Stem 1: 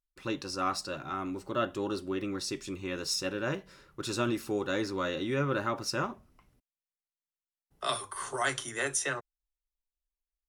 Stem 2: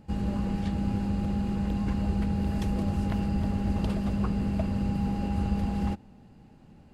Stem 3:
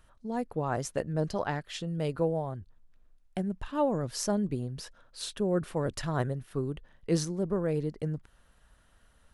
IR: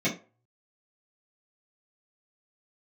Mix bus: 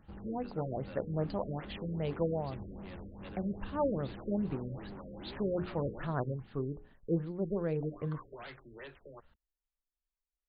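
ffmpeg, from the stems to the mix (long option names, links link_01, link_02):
-filter_complex "[0:a]volume=-3dB[link_01];[1:a]asoftclip=type=hard:threshold=-31dB,dynaudnorm=framelen=190:gausssize=9:maxgain=8.5dB,volume=-11.5dB[link_02];[2:a]deesser=0.8,bandreject=frequency=60:width_type=h:width=6,bandreject=frequency=120:width_type=h:width=6,bandreject=frequency=180:width_type=h:width=6,bandreject=frequency=240:width_type=h:width=6,bandreject=frequency=300:width_type=h:width=6,bandreject=frequency=360:width_type=h:width=6,bandreject=frequency=420:width_type=h:width=6,bandreject=frequency=480:width_type=h:width=6,volume=-3.5dB[link_03];[link_01][link_02]amix=inputs=2:normalize=0,aeval=exprs='0.0299*(abs(mod(val(0)/0.0299+3,4)-2)-1)':channel_layout=same,acompressor=threshold=-45dB:ratio=5,volume=0dB[link_04];[link_03][link_04]amix=inputs=2:normalize=0,afftfilt=real='re*lt(b*sr/1024,570*pow(5000/570,0.5+0.5*sin(2*PI*2.5*pts/sr)))':imag='im*lt(b*sr/1024,570*pow(5000/570,0.5+0.5*sin(2*PI*2.5*pts/sr)))':win_size=1024:overlap=0.75"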